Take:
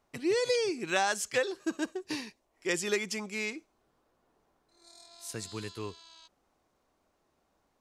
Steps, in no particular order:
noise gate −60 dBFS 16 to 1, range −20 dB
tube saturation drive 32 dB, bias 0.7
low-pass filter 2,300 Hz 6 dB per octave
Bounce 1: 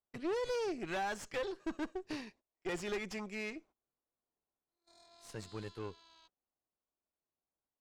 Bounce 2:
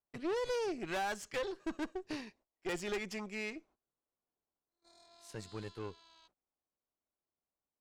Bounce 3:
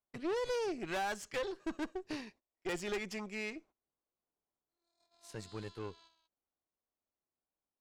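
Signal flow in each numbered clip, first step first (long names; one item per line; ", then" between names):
tube saturation, then noise gate, then low-pass filter
noise gate, then low-pass filter, then tube saturation
low-pass filter, then tube saturation, then noise gate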